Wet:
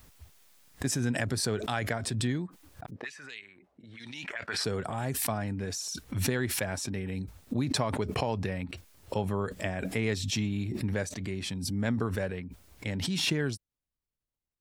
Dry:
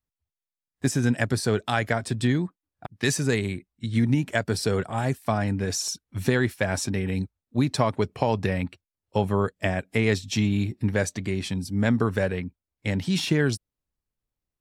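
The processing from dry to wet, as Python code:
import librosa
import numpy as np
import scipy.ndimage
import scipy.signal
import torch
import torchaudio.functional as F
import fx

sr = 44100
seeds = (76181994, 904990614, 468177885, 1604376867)

y = fx.auto_wah(x, sr, base_hz=400.0, top_hz=3900.0, q=2.8, full_db=-17.5, direction='up', at=(2.89, 4.64), fade=0.02)
y = fx.pre_swell(y, sr, db_per_s=29.0)
y = y * 10.0 ** (-8.0 / 20.0)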